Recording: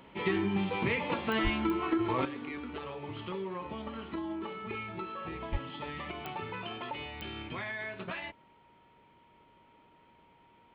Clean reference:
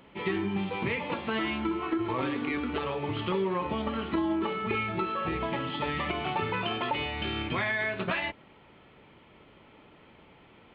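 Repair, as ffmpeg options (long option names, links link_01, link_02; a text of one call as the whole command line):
ffmpeg -i in.wav -filter_complex "[0:a]adeclick=threshold=4,bandreject=frequency=940:width=30,asplit=3[link_01][link_02][link_03];[link_01]afade=type=out:start_time=1.43:duration=0.02[link_04];[link_02]highpass=frequency=140:width=0.5412,highpass=frequency=140:width=1.3066,afade=type=in:start_time=1.43:duration=0.02,afade=type=out:start_time=1.55:duration=0.02[link_05];[link_03]afade=type=in:start_time=1.55:duration=0.02[link_06];[link_04][link_05][link_06]amix=inputs=3:normalize=0,asplit=3[link_07][link_08][link_09];[link_07]afade=type=out:start_time=5.51:duration=0.02[link_10];[link_08]highpass=frequency=140:width=0.5412,highpass=frequency=140:width=1.3066,afade=type=in:start_time=5.51:duration=0.02,afade=type=out:start_time=5.63:duration=0.02[link_11];[link_09]afade=type=in:start_time=5.63:duration=0.02[link_12];[link_10][link_11][link_12]amix=inputs=3:normalize=0,asetnsamples=nb_out_samples=441:pad=0,asendcmd='2.25 volume volume 9dB',volume=0dB" out.wav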